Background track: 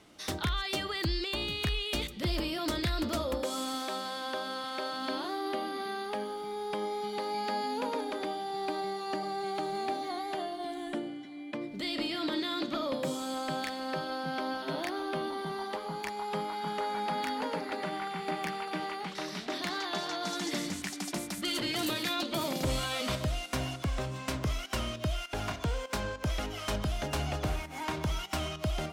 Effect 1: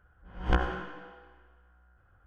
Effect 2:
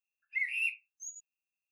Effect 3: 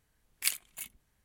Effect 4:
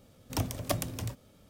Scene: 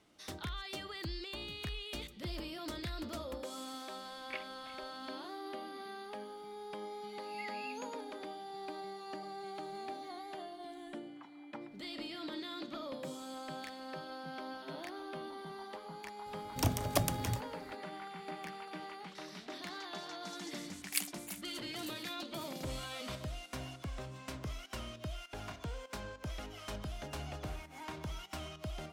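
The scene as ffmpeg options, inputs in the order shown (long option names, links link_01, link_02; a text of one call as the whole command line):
ffmpeg -i bed.wav -i cue0.wav -i cue1.wav -i cue2.wav -i cue3.wav -filter_complex "[3:a]asplit=2[link_01][link_02];[4:a]asplit=2[link_03][link_04];[0:a]volume=-10dB[link_05];[link_01]lowpass=frequency=2500:width=0.5412,lowpass=frequency=2500:width=1.3066[link_06];[2:a]acrossover=split=3400[link_07][link_08];[link_07]adelay=280[link_09];[link_09][link_08]amix=inputs=2:normalize=0[link_10];[link_03]highpass=frequency=540:width_type=q:width=0.5412,highpass=frequency=540:width_type=q:width=1.307,lowpass=frequency=2000:width_type=q:width=0.5176,lowpass=frequency=2000:width_type=q:width=0.7071,lowpass=frequency=2000:width_type=q:width=1.932,afreqshift=230[link_11];[link_02]highpass=48[link_12];[link_06]atrim=end=1.24,asetpts=PTS-STARTPTS,volume=-4dB,afade=type=in:duration=0.004:curve=hsin,afade=type=out:start_time=1.236:duration=0.004:curve=hsin,adelay=3880[link_13];[link_10]atrim=end=1.71,asetpts=PTS-STARTPTS,volume=-13.5dB,afade=type=in:duration=0.004:curve=hsin,afade=type=out:start_time=1.706:duration=0.004:curve=hsin,adelay=6750[link_14];[link_11]atrim=end=1.49,asetpts=PTS-STARTPTS,volume=-17.5dB,afade=type=in:duration=0.004:curve=hsin,afade=type=out:start_time=1.486:duration=0.004:curve=hsin,adelay=10840[link_15];[link_04]atrim=end=1.49,asetpts=PTS-STARTPTS,afade=type=in:duration=0.004:curve=hsin,afade=type=out:start_time=1.486:duration=0.004:curve=hsin,adelay=16260[link_16];[link_12]atrim=end=1.24,asetpts=PTS-STARTPTS,volume=-4.5dB,afade=type=in:duration=0.004:curve=hsin,afade=type=out:start_time=1.236:duration=0.004:curve=hsin,adelay=20500[link_17];[link_05][link_13][link_14][link_15][link_16][link_17]amix=inputs=6:normalize=0" out.wav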